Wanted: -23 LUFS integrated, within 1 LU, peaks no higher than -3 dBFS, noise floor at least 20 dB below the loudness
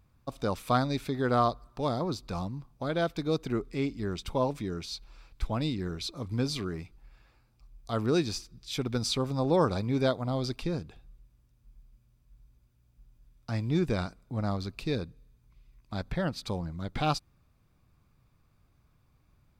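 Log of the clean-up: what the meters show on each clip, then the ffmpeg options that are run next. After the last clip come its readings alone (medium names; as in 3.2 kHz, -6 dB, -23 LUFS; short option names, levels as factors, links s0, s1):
loudness -31.5 LUFS; peak level -13.0 dBFS; loudness target -23.0 LUFS
-> -af "volume=2.66"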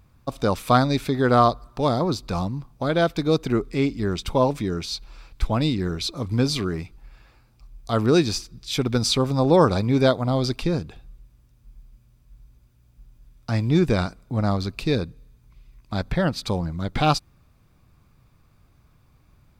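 loudness -23.0 LUFS; peak level -4.5 dBFS; noise floor -59 dBFS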